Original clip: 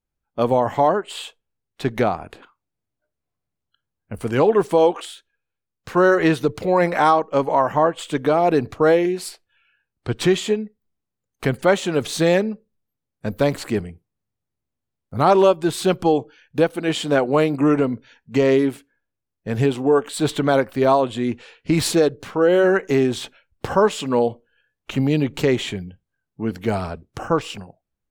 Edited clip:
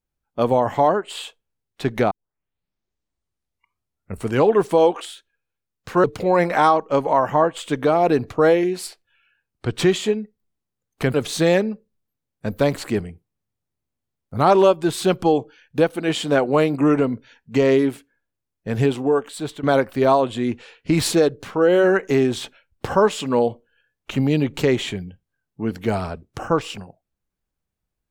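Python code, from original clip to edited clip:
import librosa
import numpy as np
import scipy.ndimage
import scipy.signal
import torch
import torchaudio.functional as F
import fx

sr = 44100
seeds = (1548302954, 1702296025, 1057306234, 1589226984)

y = fx.edit(x, sr, fx.tape_start(start_s=2.11, length_s=2.21),
    fx.cut(start_s=6.04, length_s=0.42),
    fx.cut(start_s=11.56, length_s=0.38),
    fx.fade_out_to(start_s=19.72, length_s=0.71, floor_db=-14.0), tone=tone)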